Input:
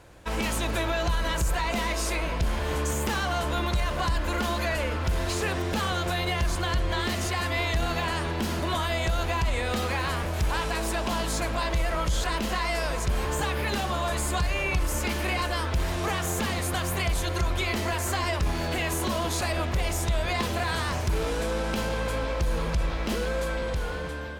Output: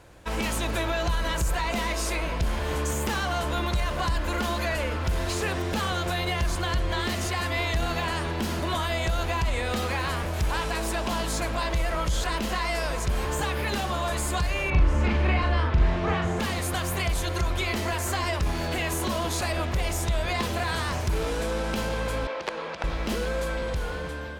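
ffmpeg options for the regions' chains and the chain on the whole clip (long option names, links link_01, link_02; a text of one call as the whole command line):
ffmpeg -i in.wav -filter_complex "[0:a]asettb=1/sr,asplit=3[link_01][link_02][link_03];[link_01]atrim=end=14.704[link_04];[link_02]atrim=start=14.7:end=16.4,asetpts=PTS-STARTPTS,afade=type=in:duration=0.004:curve=qsin,afade=type=out:start_time=1.696:duration=0.004:curve=qsin,lowpass=6200,bass=frequency=250:gain=5,treble=frequency=4000:gain=-13,asplit=2[link_05][link_06];[link_06]adelay=41,volume=-4dB[link_07];[link_05][link_07]amix=inputs=2:normalize=0,atrim=end_sample=74970[link_08];[link_03]atrim=start=16.396[link_09];[link_04][link_08]acrossfade=duration=0.004:curve1=hsin:curve2=qsin[link_10];[link_10][link_09]acrossfade=duration=0.004:curve1=qsin:curve2=hsin,asettb=1/sr,asplit=3[link_11][link_12][link_13];[link_11]atrim=end=22.274[link_14];[link_12]atrim=start=22.27:end=22.84,asetpts=PTS-STARTPTS,afade=type=in:duration=0.004:curve=qsin,afade=type=out:start_time=0.566:duration=0.004:curve=qsin,bandreject=frequency=60:width_type=h:width=6,bandreject=frequency=120:width_type=h:width=6,bandreject=frequency=180:width_type=h:width=6,bandreject=frequency=240:width_type=h:width=6,bandreject=frequency=300:width_type=h:width=6,bandreject=frequency=360:width_type=h:width=6,bandreject=frequency=420:width_type=h:width=6,bandreject=frequency=480:width_type=h:width=6,aeval=exprs='(mod(7.94*val(0)+1,2)-1)/7.94':channel_layout=same,highpass=380,lowpass=3900[link_15];[link_13]atrim=start=22.836[link_16];[link_14][link_15]acrossfade=duration=0.004:curve1=hsin:curve2=qsin[link_17];[link_17][link_16]acrossfade=duration=0.004:curve1=qsin:curve2=hsin" out.wav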